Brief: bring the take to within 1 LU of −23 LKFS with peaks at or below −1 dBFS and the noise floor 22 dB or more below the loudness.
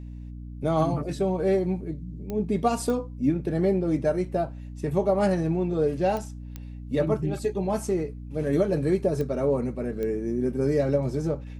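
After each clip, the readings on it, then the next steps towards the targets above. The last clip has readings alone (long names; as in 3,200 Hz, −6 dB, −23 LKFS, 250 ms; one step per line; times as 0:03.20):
number of clicks 6; mains hum 60 Hz; hum harmonics up to 300 Hz; level of the hum −36 dBFS; integrated loudness −26.5 LKFS; sample peak −11.5 dBFS; target loudness −23.0 LKFS
→ click removal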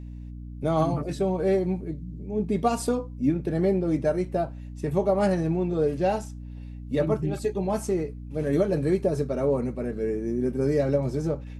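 number of clicks 0; mains hum 60 Hz; hum harmonics up to 300 Hz; level of the hum −36 dBFS
→ mains-hum notches 60/120/180/240/300 Hz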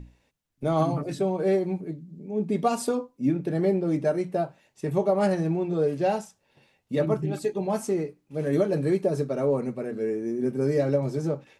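mains hum none found; integrated loudness −26.5 LKFS; sample peak −11.5 dBFS; target loudness −23.0 LKFS
→ level +3.5 dB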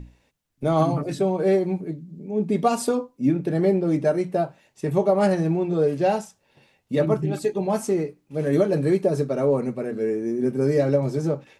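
integrated loudness −23.0 LKFS; sample peak −8.0 dBFS; background noise floor −68 dBFS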